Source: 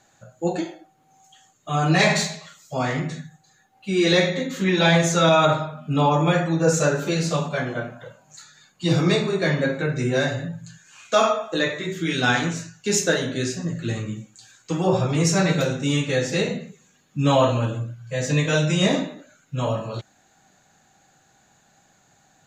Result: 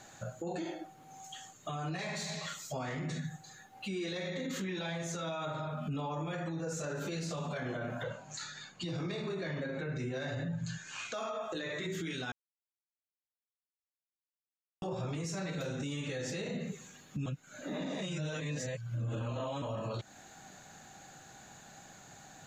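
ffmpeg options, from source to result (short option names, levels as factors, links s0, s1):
-filter_complex "[0:a]asettb=1/sr,asplit=3[s0][s1][s2];[s0]atrim=end=8.034[s3];[s1]atrim=start=8.03:end=11.14,asetpts=PTS-STARTPTS,afade=t=in:d=0.004:c=qsin,afade=t=out:st=3.106:d=0.004:c=qsin,lowpass=6100[s4];[s2]atrim=start=11.136[s5];[s3][s4]acrossfade=d=0.004:c1=hsin:c2=qsin[s6];[s6][s5]acrossfade=d=0.004:c1=qsin:c2=hsin,asplit=5[s7][s8][s9][s10][s11];[s7]atrim=end=12.32,asetpts=PTS-STARTPTS,afade=t=out:st=12.316:d=0.004:c=hsin[s12];[s8]atrim=start=12.32:end=14.82,asetpts=PTS-STARTPTS,volume=0[s13];[s9]atrim=start=14.82:end=17.262,asetpts=PTS-STARTPTS,afade=t=in:d=0.004:c=hsin[s14];[s10]atrim=start=17.258:end=19.622,asetpts=PTS-STARTPTS,areverse[s15];[s11]atrim=start=19.618[s16];[s12][s13][s14]concat=n=3:v=0:a=1[s17];[s17][s15]acrossfade=d=0.004:c1=hsin:c2=hsin[s18];[s18][s16]acrossfade=d=0.004:c1=hsin:c2=hsin,acompressor=threshold=0.02:ratio=6,alimiter=level_in=3.76:limit=0.0631:level=0:latency=1:release=42,volume=0.266,volume=1.88"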